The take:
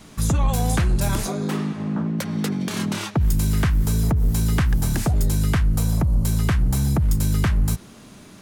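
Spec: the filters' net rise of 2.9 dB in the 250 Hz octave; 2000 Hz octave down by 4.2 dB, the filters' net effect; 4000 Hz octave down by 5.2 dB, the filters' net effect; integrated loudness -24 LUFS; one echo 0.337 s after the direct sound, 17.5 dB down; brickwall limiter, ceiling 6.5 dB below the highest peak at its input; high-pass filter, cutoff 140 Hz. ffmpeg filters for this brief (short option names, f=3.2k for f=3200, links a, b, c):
-af "highpass=140,equalizer=f=250:t=o:g=5.5,equalizer=f=2k:t=o:g=-4.5,equalizer=f=4k:t=o:g=-5.5,alimiter=limit=-16.5dB:level=0:latency=1,aecho=1:1:337:0.133,volume=1.5dB"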